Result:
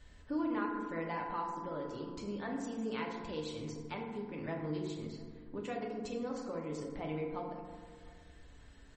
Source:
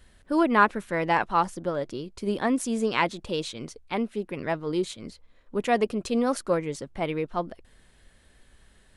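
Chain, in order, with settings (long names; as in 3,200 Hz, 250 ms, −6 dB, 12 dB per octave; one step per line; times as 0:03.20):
low-shelf EQ 85 Hz +3.5 dB
downward compressor 3 to 1, threshold −40 dBFS, peak gain reduction 19.5 dB
tuned comb filter 200 Hz, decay 0.32 s, harmonics odd, mix 50%
slap from a distant wall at 120 metres, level −23 dB
feedback delay network reverb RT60 1.6 s, low-frequency decay 1.4×, high-frequency decay 0.4×, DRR −1 dB
level +1 dB
MP3 32 kbit/s 44,100 Hz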